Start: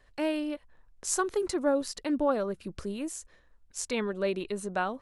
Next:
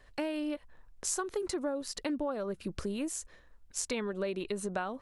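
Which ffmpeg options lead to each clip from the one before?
-af "acompressor=threshold=0.02:ratio=6,volume=1.41"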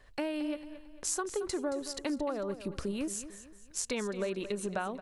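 -af "aecho=1:1:224|448|672|896:0.224|0.0873|0.0341|0.0133"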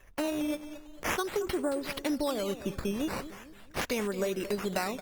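-af "acrusher=samples=10:mix=1:aa=0.000001:lfo=1:lforange=10:lforate=0.44,volume=1.41" -ar 48000 -c:a libopus -b:a 24k

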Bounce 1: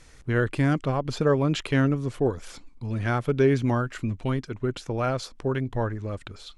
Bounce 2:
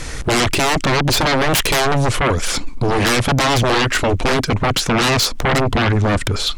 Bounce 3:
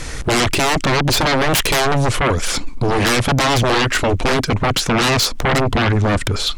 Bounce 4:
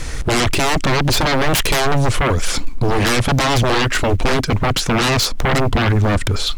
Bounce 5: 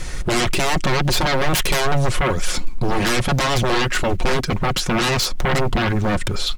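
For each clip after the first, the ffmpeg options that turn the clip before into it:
-filter_complex "[0:a]acrossover=split=1900[s0][s1];[s0]alimiter=limit=0.0891:level=0:latency=1:release=378[s2];[s2][s1]amix=inputs=2:normalize=0,aeval=exprs='0.141*sin(PI/2*6.31*val(0)/0.141)':c=same,volume=1.78"
-af anull
-filter_complex "[0:a]lowshelf=f=91:g=6,asplit=2[s0][s1];[s1]acrusher=bits=5:mode=log:mix=0:aa=0.000001,volume=0.251[s2];[s0][s2]amix=inputs=2:normalize=0,volume=0.708"
-af "aecho=1:1:5.5:0.42,volume=0.668"

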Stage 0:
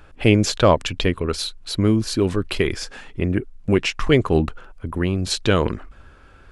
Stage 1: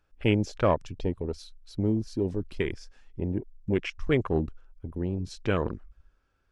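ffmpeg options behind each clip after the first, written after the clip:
-af "afwtdn=0.0631,equalizer=f=5600:t=o:w=0.59:g=8,volume=0.376"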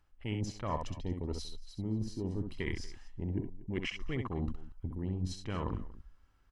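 -af "aecho=1:1:1:0.46,areverse,acompressor=threshold=0.0251:ratio=10,areverse,aecho=1:1:65|69|236:0.473|0.133|0.106"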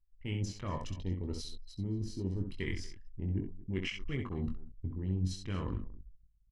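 -filter_complex "[0:a]equalizer=f=780:w=0.95:g=-8.5,asplit=2[s0][s1];[s1]adelay=21,volume=0.501[s2];[s0][s2]amix=inputs=2:normalize=0,anlmdn=0.000398"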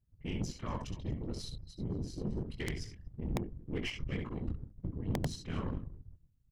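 -af "afftfilt=real='hypot(re,im)*cos(2*PI*random(0))':imag='hypot(re,im)*sin(2*PI*random(1))':win_size=512:overlap=0.75,aeval=exprs='(mod(28.2*val(0)+1,2)-1)/28.2':c=same,aeval=exprs='0.0355*(cos(1*acos(clip(val(0)/0.0355,-1,1)))-cos(1*PI/2))+0.00282*(cos(6*acos(clip(val(0)/0.0355,-1,1)))-cos(6*PI/2))':c=same,volume=1.68"

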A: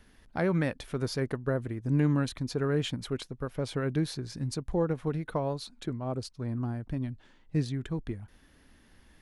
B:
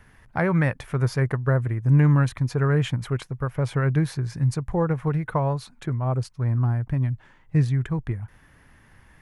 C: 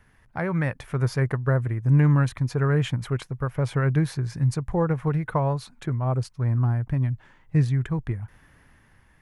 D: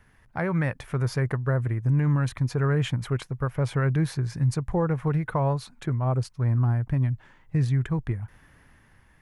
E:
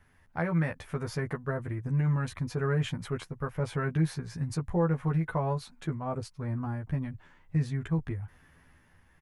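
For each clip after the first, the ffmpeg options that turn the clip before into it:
-af "equalizer=f=125:t=o:w=1:g=11,equalizer=f=250:t=o:w=1:g=-5,equalizer=f=1000:t=o:w=1:g=6,equalizer=f=2000:t=o:w=1:g=6,equalizer=f=4000:t=o:w=1:g=-7,volume=1.41"
-af "dynaudnorm=f=170:g=9:m=1.88,volume=0.531"
-af "alimiter=limit=0.168:level=0:latency=1:release=34"
-filter_complex "[0:a]asplit=2[s0][s1];[s1]adelay=12,volume=0.75[s2];[s0][s2]amix=inputs=2:normalize=0,volume=0.501"

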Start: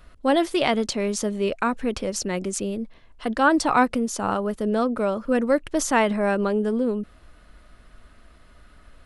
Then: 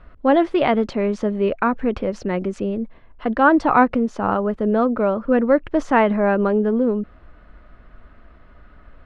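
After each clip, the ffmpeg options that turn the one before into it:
-af "lowpass=1900,volume=1.68"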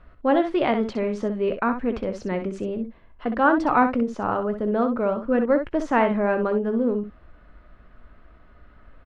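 -af "aecho=1:1:17|63:0.2|0.376,volume=0.596"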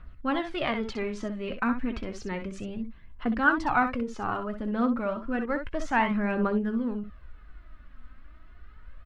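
-af "equalizer=f=510:t=o:w=1.9:g=-11.5,aphaser=in_gain=1:out_gain=1:delay=4:decay=0.46:speed=0.31:type=triangular"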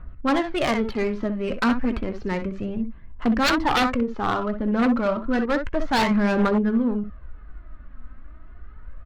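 -af "aeval=exprs='0.0841*(abs(mod(val(0)/0.0841+3,4)-2)-1)':c=same,adynamicsmooth=sensitivity=4.5:basefreq=1700,equalizer=f=4300:t=o:w=0.3:g=3.5,volume=2.37"

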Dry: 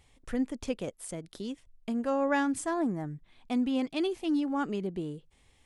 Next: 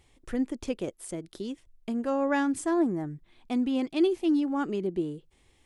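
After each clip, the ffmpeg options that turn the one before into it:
-af "equalizer=f=350:w=3.8:g=8.5"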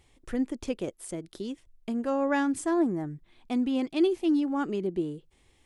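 -af anull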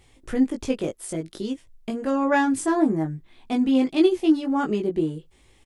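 -filter_complex "[0:a]asplit=2[s0][s1];[s1]adelay=19,volume=0.708[s2];[s0][s2]amix=inputs=2:normalize=0,volume=1.68"

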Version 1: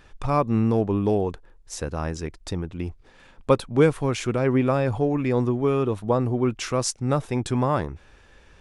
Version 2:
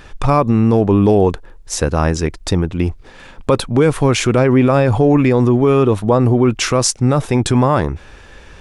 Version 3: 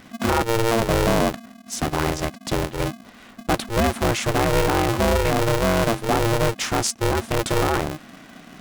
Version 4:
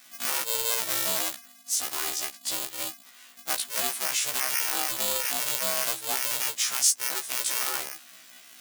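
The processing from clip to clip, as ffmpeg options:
-af "alimiter=level_in=5.96:limit=0.891:release=50:level=0:latency=1,volume=0.75"
-af "areverse,acompressor=mode=upward:threshold=0.0316:ratio=2.5,areverse,aeval=exprs='val(0)*sgn(sin(2*PI*230*n/s))':c=same,volume=0.422"
-af "aderivative,afftfilt=real='re*1.73*eq(mod(b,3),0)':imag='im*1.73*eq(mod(b,3),0)':win_size=2048:overlap=0.75,volume=2.24"

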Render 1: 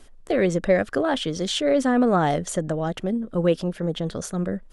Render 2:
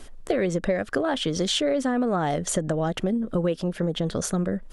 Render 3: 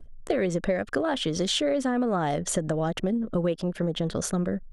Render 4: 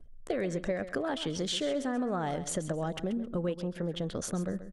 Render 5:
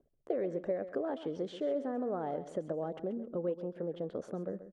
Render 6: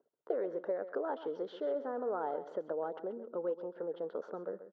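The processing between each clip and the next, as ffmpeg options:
-af "acompressor=threshold=0.0398:ratio=6,volume=2.11"
-af "anlmdn=0.1,volume=0.841"
-af "aecho=1:1:133|266|399:0.237|0.0569|0.0137,volume=0.473"
-af "bandpass=f=470:t=q:w=1.2:csg=0"
-af "highpass=330,equalizer=f=450:t=q:w=4:g=6,equalizer=f=930:t=q:w=4:g=10,equalizer=f=1400:t=q:w=4:g=10,equalizer=f=2400:t=q:w=4:g=-9,lowpass=f=4700:w=0.5412,lowpass=f=4700:w=1.3066,volume=0.708"

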